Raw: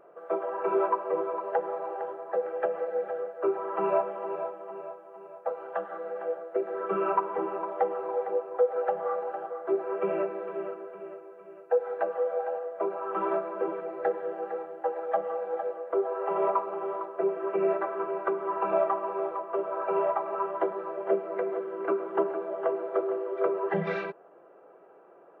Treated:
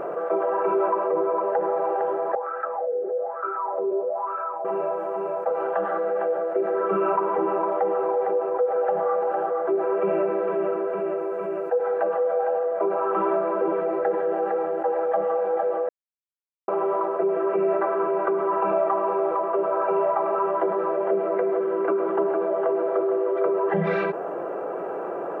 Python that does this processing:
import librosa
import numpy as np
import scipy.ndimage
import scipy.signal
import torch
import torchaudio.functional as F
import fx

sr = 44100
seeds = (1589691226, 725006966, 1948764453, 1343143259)

y = fx.lowpass(x, sr, hz=fx.line((1.07, 2100.0), (1.76, 3200.0)), slope=6, at=(1.07, 1.76), fade=0.02)
y = fx.wah_lfo(y, sr, hz=1.1, low_hz=390.0, high_hz=1400.0, q=9.2, at=(2.35, 4.65))
y = fx.edit(y, sr, fx.silence(start_s=15.89, length_s=0.79), tone=tone)
y = fx.high_shelf(y, sr, hz=2500.0, db=-9.0)
y = fx.env_flatten(y, sr, amount_pct=70)